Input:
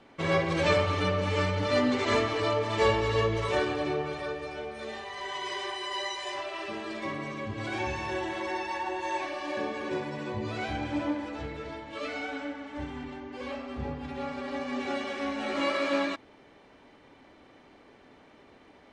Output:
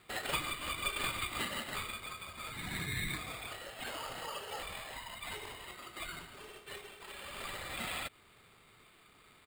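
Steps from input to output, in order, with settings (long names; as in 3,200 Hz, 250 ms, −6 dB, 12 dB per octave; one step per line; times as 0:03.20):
inverse Chebyshev high-pass filter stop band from 1,200 Hz, stop band 60 dB
comb filter 7 ms, depth 73%
in parallel at +1 dB: downward compressor, threshold −56 dBFS, peak gain reduction 19.5 dB
on the sum: decimation without filtering 15×
wrong playback speed 7.5 ips tape played at 15 ips
level +5 dB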